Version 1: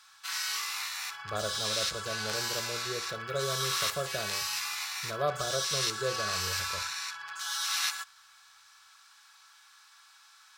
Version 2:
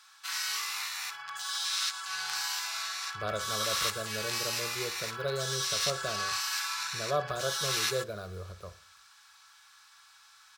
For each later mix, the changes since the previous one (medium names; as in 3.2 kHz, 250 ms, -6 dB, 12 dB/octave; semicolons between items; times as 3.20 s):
speech: entry +1.90 s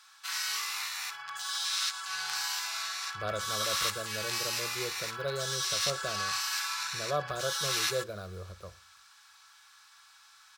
reverb: off